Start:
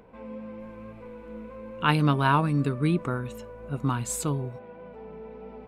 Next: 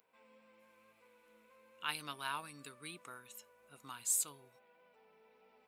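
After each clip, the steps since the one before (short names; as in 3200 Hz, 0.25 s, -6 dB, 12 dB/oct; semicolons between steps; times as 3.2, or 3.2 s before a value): differentiator; gain -1.5 dB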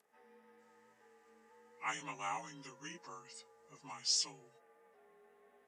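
inharmonic rescaling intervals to 88%; low shelf 60 Hz -6.5 dB; gain +2 dB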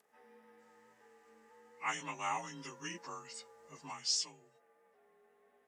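vocal rider within 4 dB 0.5 s; gain +1 dB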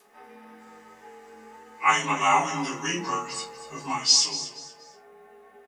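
feedback echo 0.238 s, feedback 30%, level -13.5 dB; shoebox room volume 140 m³, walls furnished, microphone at 3.3 m; gain +8 dB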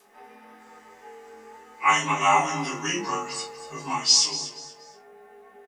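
doubler 20 ms -6.5 dB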